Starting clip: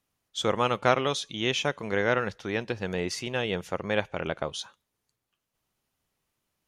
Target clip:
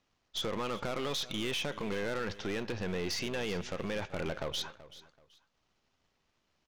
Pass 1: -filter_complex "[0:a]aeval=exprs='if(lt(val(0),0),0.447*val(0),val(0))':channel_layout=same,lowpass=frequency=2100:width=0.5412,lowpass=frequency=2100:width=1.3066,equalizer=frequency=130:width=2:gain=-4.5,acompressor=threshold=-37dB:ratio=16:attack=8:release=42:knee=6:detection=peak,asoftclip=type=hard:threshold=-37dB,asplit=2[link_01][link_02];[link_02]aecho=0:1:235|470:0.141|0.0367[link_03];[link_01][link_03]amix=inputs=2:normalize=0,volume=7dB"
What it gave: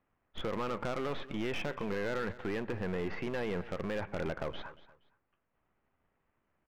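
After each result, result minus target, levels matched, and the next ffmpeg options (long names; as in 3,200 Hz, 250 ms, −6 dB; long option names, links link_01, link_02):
8,000 Hz band −13.5 dB; echo 146 ms early
-filter_complex "[0:a]aeval=exprs='if(lt(val(0),0),0.447*val(0),val(0))':channel_layout=same,lowpass=frequency=6000:width=0.5412,lowpass=frequency=6000:width=1.3066,equalizer=frequency=130:width=2:gain=-4.5,acompressor=threshold=-37dB:ratio=16:attack=8:release=42:knee=6:detection=peak,asoftclip=type=hard:threshold=-37dB,asplit=2[link_01][link_02];[link_02]aecho=0:1:235|470:0.141|0.0367[link_03];[link_01][link_03]amix=inputs=2:normalize=0,volume=7dB"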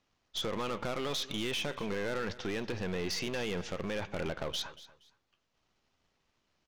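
echo 146 ms early
-filter_complex "[0:a]aeval=exprs='if(lt(val(0),0),0.447*val(0),val(0))':channel_layout=same,lowpass=frequency=6000:width=0.5412,lowpass=frequency=6000:width=1.3066,equalizer=frequency=130:width=2:gain=-4.5,acompressor=threshold=-37dB:ratio=16:attack=8:release=42:knee=6:detection=peak,asoftclip=type=hard:threshold=-37dB,asplit=2[link_01][link_02];[link_02]aecho=0:1:381|762:0.141|0.0367[link_03];[link_01][link_03]amix=inputs=2:normalize=0,volume=7dB"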